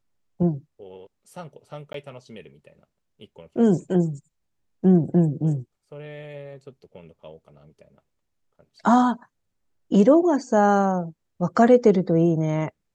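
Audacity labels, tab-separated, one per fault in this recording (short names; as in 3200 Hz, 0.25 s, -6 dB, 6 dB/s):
1.930000	1.940000	gap 13 ms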